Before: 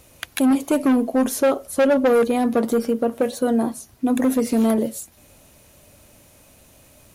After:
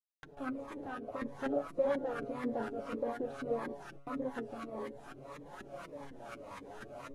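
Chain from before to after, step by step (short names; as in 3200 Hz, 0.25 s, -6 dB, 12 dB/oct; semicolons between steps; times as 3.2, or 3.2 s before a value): per-bin compression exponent 0.6; pre-emphasis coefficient 0.97; gate with hold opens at -30 dBFS; high shelf 4400 Hz +7.5 dB; AGC gain up to 16 dB; transient shaper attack -6 dB, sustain +4 dB; fuzz box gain 37 dB, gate -33 dBFS; resonator 140 Hz, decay 0.44 s, harmonics all, mix 80%; LFO low-pass saw up 4.1 Hz 300–1600 Hz; flange 0.53 Hz, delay 5 ms, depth 5.4 ms, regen +27%; wow and flutter 24 cents; cascading phaser falling 1.7 Hz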